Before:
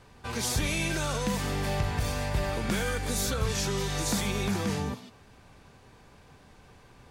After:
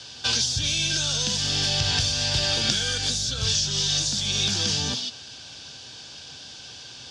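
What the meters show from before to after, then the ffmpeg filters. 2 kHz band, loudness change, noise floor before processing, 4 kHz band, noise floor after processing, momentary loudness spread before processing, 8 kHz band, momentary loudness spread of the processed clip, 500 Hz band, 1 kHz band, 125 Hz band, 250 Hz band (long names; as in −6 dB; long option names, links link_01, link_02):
+3.0 dB, +7.5 dB, −56 dBFS, +15.0 dB, −42 dBFS, 3 LU, +9.0 dB, 18 LU, −4.0 dB, −3.0 dB, +1.0 dB, −3.5 dB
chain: -filter_complex "[0:a]aexciter=amount=13:drive=9.2:freq=3100,acrossover=split=160[link_01][link_02];[link_02]acompressor=threshold=-18dB:ratio=10[link_03];[link_01][link_03]amix=inputs=2:normalize=0,highpass=100,equalizer=frequency=190:width_type=q:width=4:gain=-7,equalizer=frequency=410:width_type=q:width=4:gain=-5,equalizer=frequency=1100:width_type=q:width=4:gain=-7,equalizer=frequency=1600:width_type=q:width=4:gain=9,equalizer=frequency=2500:width_type=q:width=4:gain=-4,equalizer=frequency=4100:width_type=q:width=4:gain=-8,lowpass=frequency=4700:width=0.5412,lowpass=frequency=4700:width=1.3066,volume=6dB"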